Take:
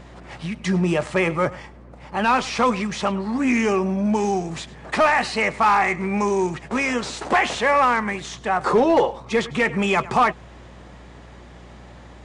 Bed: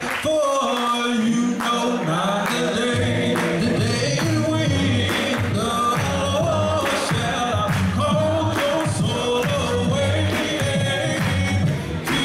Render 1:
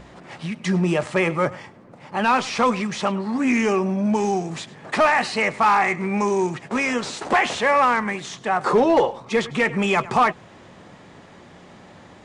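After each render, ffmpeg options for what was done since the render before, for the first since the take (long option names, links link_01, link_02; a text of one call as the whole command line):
ffmpeg -i in.wav -af "bandreject=frequency=60:width_type=h:width=4,bandreject=frequency=120:width_type=h:width=4" out.wav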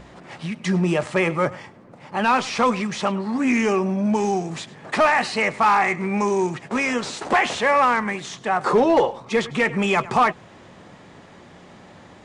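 ffmpeg -i in.wav -af anull out.wav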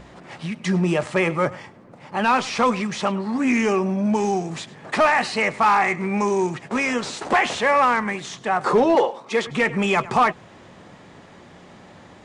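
ffmpeg -i in.wav -filter_complex "[0:a]asettb=1/sr,asplit=3[link_01][link_02][link_03];[link_01]atrim=end=8.954[link_04];[link_02]atrim=start=8.95:end=9.47,asetpts=PTS-STARTPTS,afade=type=in:duration=0.004:curve=qsin,afade=type=out:start_time=0.516:duration=0.004:curve=qsin,highpass=270[link_05];[link_03]atrim=start=9.466[link_06];[link_04][link_05]acrossfade=duration=0.004:curve1=hsin:curve2=qsin[link_07];[link_07][link_06]acrossfade=duration=0.004:curve1=qsin:curve2=hsin" out.wav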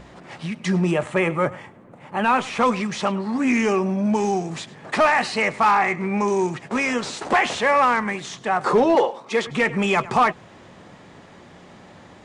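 ffmpeg -i in.wav -filter_complex "[0:a]asettb=1/sr,asplit=3[link_01][link_02][link_03];[link_01]atrim=end=0.914[link_04];[link_02]atrim=start=0.91:end=2.61,asetpts=PTS-STARTPTS,afade=type=in:duration=0.004:curve=qsin,afade=type=out:start_time=1.696:duration=0.004:curve=qsin,equalizer=frequency=5000:width_type=o:width=0.68:gain=-10.5[link_05];[link_03]atrim=start=2.606[link_06];[link_04][link_05]acrossfade=duration=0.004:curve1=hsin:curve2=qsin[link_07];[link_07][link_06]acrossfade=duration=0.004:curve1=qsin:curve2=hsin,asettb=1/sr,asplit=3[link_08][link_09][link_10];[link_08]atrim=end=5.714[link_11];[link_09]atrim=start=5.71:end=6.28,asetpts=PTS-STARTPTS,afade=type=in:duration=0.004:curve=qsin,afade=type=out:start_time=0.566:duration=0.004:curve=qsin,highshelf=frequency=5300:gain=-6.5[link_12];[link_10]atrim=start=6.276[link_13];[link_11][link_12]acrossfade=duration=0.004:curve1=hsin:curve2=qsin[link_14];[link_14][link_13]acrossfade=duration=0.004:curve1=qsin:curve2=hsin" out.wav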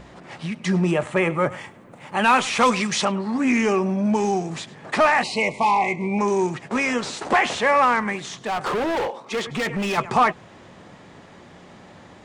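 ffmpeg -i in.wav -filter_complex "[0:a]asettb=1/sr,asplit=3[link_01][link_02][link_03];[link_01]atrim=end=1.504[link_04];[link_02]atrim=start=1.5:end=3.05,asetpts=PTS-STARTPTS,afade=type=in:duration=0.004:curve=qsin,afade=type=out:start_time=1.546:duration=0.004:curve=qsin,highshelf=frequency=2300:gain=10.5[link_05];[link_03]atrim=start=3.046[link_06];[link_04][link_05]acrossfade=duration=0.004:curve1=hsin:curve2=qsin[link_07];[link_07][link_06]acrossfade=duration=0.004:curve1=qsin:curve2=hsin,asettb=1/sr,asplit=3[link_08][link_09][link_10];[link_08]atrim=end=5.234[link_11];[link_09]atrim=start=5.23:end=6.19,asetpts=PTS-STARTPTS,afade=type=in:duration=0.004:curve=qsin,afade=type=out:start_time=0.956:duration=0.004:curve=qsin,asuperstop=centerf=1500:order=12:qfactor=1.6[link_12];[link_10]atrim=start=6.186[link_13];[link_11][link_12]acrossfade=duration=0.004:curve1=hsin:curve2=qsin[link_14];[link_14][link_13]acrossfade=duration=0.004:curve1=qsin:curve2=hsin,asettb=1/sr,asplit=3[link_15][link_16][link_17];[link_15]atrim=end=8.164[link_18];[link_16]atrim=start=8.16:end=9.98,asetpts=PTS-STARTPTS,afade=type=in:duration=0.004:curve=qsin,afade=type=out:start_time=1.816:duration=0.004:curve=qsin,asoftclip=type=hard:threshold=-21.5dB[link_19];[link_17]atrim=start=9.976[link_20];[link_18][link_19]acrossfade=duration=0.004:curve1=hsin:curve2=qsin[link_21];[link_21][link_20]acrossfade=duration=0.004:curve1=qsin:curve2=hsin" out.wav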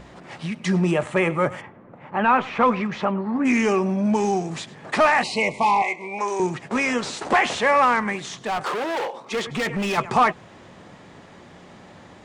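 ffmpeg -i in.wav -filter_complex "[0:a]asplit=3[link_01][link_02][link_03];[link_01]afade=type=out:start_time=1.6:duration=0.02[link_04];[link_02]lowpass=1700,afade=type=in:start_time=1.6:duration=0.02,afade=type=out:start_time=3.44:duration=0.02[link_05];[link_03]afade=type=in:start_time=3.44:duration=0.02[link_06];[link_04][link_05][link_06]amix=inputs=3:normalize=0,asettb=1/sr,asplit=3[link_07][link_08][link_09];[link_07]atrim=end=5.824[link_10];[link_08]atrim=start=5.82:end=6.4,asetpts=PTS-STARTPTS,afade=type=in:duration=0.004:curve=qsin,afade=type=out:start_time=0.576:duration=0.004:curve=qsin,highpass=530[link_11];[link_09]atrim=start=6.396[link_12];[link_10][link_11]acrossfade=duration=0.004:curve1=hsin:curve2=qsin[link_13];[link_13][link_12]acrossfade=duration=0.004:curve1=qsin:curve2=hsin,asettb=1/sr,asplit=3[link_14][link_15][link_16];[link_14]atrim=end=8.634[link_17];[link_15]atrim=start=8.63:end=9.14,asetpts=PTS-STARTPTS,afade=type=in:duration=0.004:curve=qsin,afade=type=out:start_time=0.506:duration=0.004:curve=qsin,highpass=frequency=500:poles=1[link_18];[link_16]atrim=start=9.136[link_19];[link_17][link_18]acrossfade=duration=0.004:curve1=hsin:curve2=qsin[link_20];[link_20][link_19]acrossfade=duration=0.004:curve1=qsin:curve2=hsin" out.wav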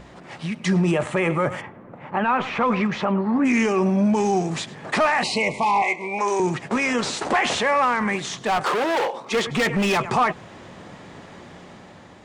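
ffmpeg -i in.wav -af "dynaudnorm=framelen=160:gausssize=9:maxgain=4dB,alimiter=limit=-13dB:level=0:latency=1:release=15" out.wav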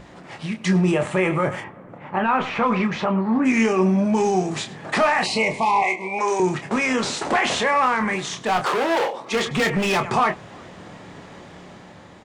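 ffmpeg -i in.wav -filter_complex "[0:a]asplit=2[link_01][link_02];[link_02]adelay=27,volume=-7.5dB[link_03];[link_01][link_03]amix=inputs=2:normalize=0,asplit=2[link_04][link_05];[link_05]adelay=361.5,volume=-29dB,highshelf=frequency=4000:gain=-8.13[link_06];[link_04][link_06]amix=inputs=2:normalize=0" out.wav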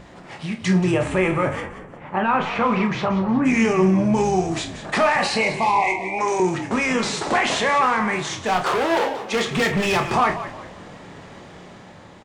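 ffmpeg -i in.wav -filter_complex "[0:a]asplit=2[link_01][link_02];[link_02]adelay=48,volume=-12dB[link_03];[link_01][link_03]amix=inputs=2:normalize=0,asplit=5[link_04][link_05][link_06][link_07][link_08];[link_05]adelay=180,afreqshift=-60,volume=-12.5dB[link_09];[link_06]adelay=360,afreqshift=-120,volume=-21.4dB[link_10];[link_07]adelay=540,afreqshift=-180,volume=-30.2dB[link_11];[link_08]adelay=720,afreqshift=-240,volume=-39.1dB[link_12];[link_04][link_09][link_10][link_11][link_12]amix=inputs=5:normalize=0" out.wav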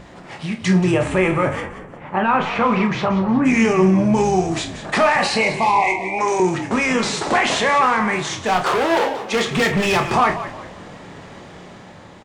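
ffmpeg -i in.wav -af "volume=2.5dB" out.wav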